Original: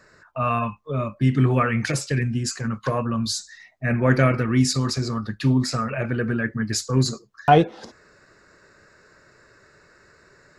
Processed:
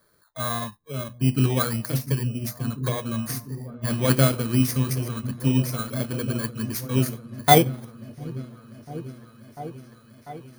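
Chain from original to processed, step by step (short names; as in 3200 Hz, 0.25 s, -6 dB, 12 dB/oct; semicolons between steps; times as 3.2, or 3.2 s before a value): FFT order left unsorted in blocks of 16 samples; repeats that get brighter 0.696 s, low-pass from 200 Hz, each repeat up 1 oct, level -6 dB; upward expander 1.5:1, over -32 dBFS; gain +1 dB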